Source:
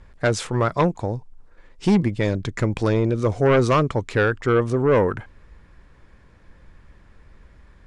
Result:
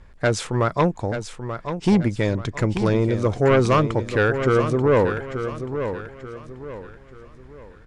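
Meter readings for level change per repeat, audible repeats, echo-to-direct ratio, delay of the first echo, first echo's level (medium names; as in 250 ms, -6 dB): -9.0 dB, 3, -8.5 dB, 884 ms, -9.0 dB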